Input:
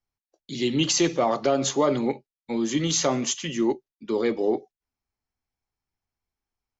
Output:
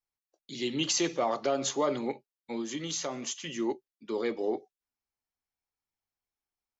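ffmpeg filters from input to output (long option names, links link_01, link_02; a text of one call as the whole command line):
ffmpeg -i in.wav -filter_complex "[0:a]lowshelf=frequency=220:gain=-9,asettb=1/sr,asplit=3[link_01][link_02][link_03];[link_01]atrim=end=2.614[link_04];[link_02]atrim=start=2.61:end=3.47,asetpts=PTS-STARTPTS,afade=type=in:duration=0.004:curve=qsin,afade=type=out:start_time=0.856:duration=0.004:curve=qsin,acompressor=threshold=-30dB:ratio=2[link_05];[link_03]atrim=start=3.466[link_06];[link_04][link_05]acrossfade=duration=0.004:curve1=hsin:curve2=qsin[link_07];[link_07][link_06]acrossfade=duration=0.004:curve1=qsin:curve2=hsin,volume=-5dB" out.wav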